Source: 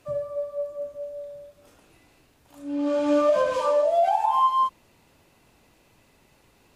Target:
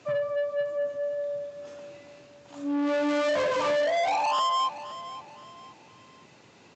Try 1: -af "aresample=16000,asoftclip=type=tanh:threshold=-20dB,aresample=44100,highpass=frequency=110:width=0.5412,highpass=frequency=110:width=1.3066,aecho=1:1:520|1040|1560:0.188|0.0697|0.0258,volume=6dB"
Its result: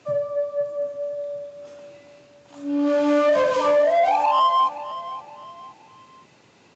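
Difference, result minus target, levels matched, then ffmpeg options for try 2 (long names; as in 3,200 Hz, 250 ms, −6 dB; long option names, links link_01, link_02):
soft clipping: distortion −8 dB
-af "aresample=16000,asoftclip=type=tanh:threshold=-30dB,aresample=44100,highpass=frequency=110:width=0.5412,highpass=frequency=110:width=1.3066,aecho=1:1:520|1040|1560:0.188|0.0697|0.0258,volume=6dB"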